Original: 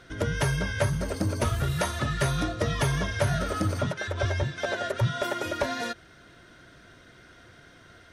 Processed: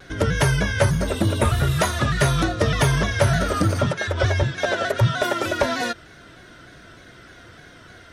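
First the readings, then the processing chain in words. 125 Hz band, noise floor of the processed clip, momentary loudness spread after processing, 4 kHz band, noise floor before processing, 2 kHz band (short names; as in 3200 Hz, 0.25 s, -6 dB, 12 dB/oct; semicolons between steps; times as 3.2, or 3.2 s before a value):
+7.0 dB, -46 dBFS, 3 LU, +7.0 dB, -53 dBFS, +7.0 dB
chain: spectral repair 1.1–1.64, 2700–6600 Hz after; shaped vibrato saw down 3.3 Hz, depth 100 cents; gain +7 dB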